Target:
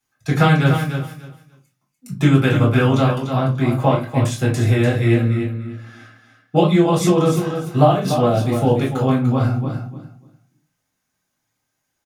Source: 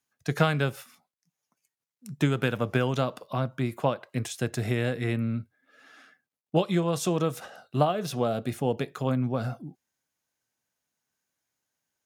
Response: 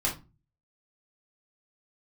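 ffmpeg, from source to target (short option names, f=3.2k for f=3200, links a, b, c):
-filter_complex "[0:a]aecho=1:1:294|588|882:0.398|0.0756|0.0144[a];[1:a]atrim=start_sample=2205[b];[a][b]afir=irnorm=-1:irlink=0,volume=1dB"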